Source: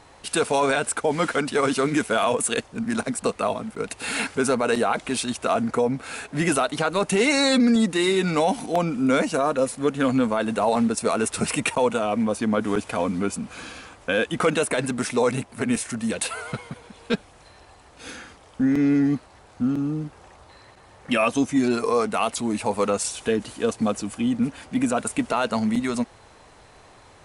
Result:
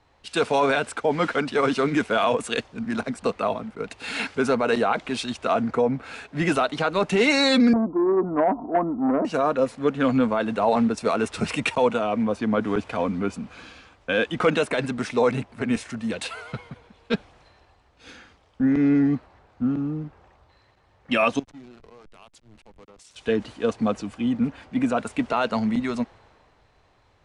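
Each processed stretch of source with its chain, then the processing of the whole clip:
7.73–9.25 steep low-pass 1200 Hz 72 dB/oct + comb 3 ms, depth 55% + core saturation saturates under 630 Hz
21.39–23.16 pre-emphasis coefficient 0.8 + backlash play -28 dBFS + compressor 2:1, threshold -40 dBFS
whole clip: LPF 4500 Hz 12 dB/oct; three-band expander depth 40%

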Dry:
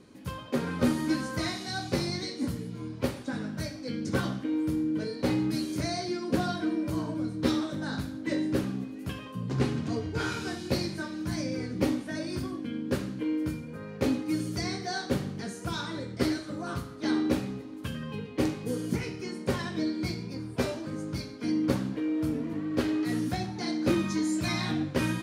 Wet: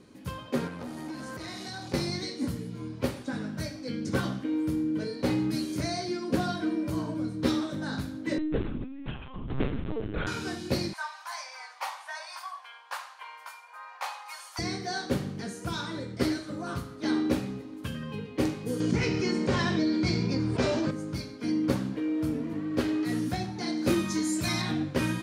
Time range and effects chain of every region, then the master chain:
0.67–1.94 compressor, threshold -33 dBFS + core saturation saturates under 560 Hz
8.38–10.27 notches 60/120/180/240/300/360 Hz + LPC vocoder at 8 kHz pitch kept
10.93–14.59 elliptic high-pass 740 Hz, stop band 60 dB + bell 1000 Hz +12 dB 0.71 oct
18.8–20.91 LPF 7200 Hz 24 dB/oct + fast leveller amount 70%
23.77–24.62 high shelf 6600 Hz +8.5 dB + doubler 44 ms -12.5 dB
whole clip: dry

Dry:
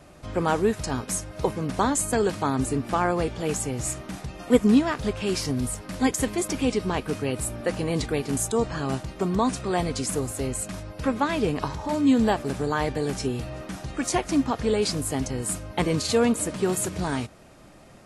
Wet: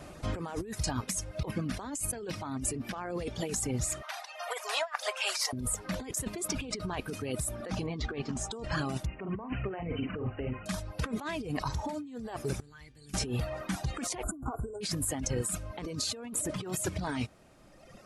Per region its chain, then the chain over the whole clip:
4.02–5.53 elliptic high-pass 620 Hz, stop band 60 dB + negative-ratio compressor -33 dBFS, ratio -0.5
7.86–8.52 Gaussian blur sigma 1.6 samples + notch 1500 Hz, Q 22 + doubler 13 ms -9 dB
9.06–10.66 brick-wall FIR low-pass 3100 Hz + doubler 47 ms -6 dB
12.6–13.14 passive tone stack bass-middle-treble 6-0-2 + notches 60/120/180/240/300/360/420/480/540 Hz
14.23–14.81 brick-wall FIR band-stop 1600–6800 Hz + comb 2.8 ms, depth 63% + upward compressor, threshold -26 dBFS
whole clip: reverb removal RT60 1.8 s; negative-ratio compressor -33 dBFS, ratio -1; gain -2 dB

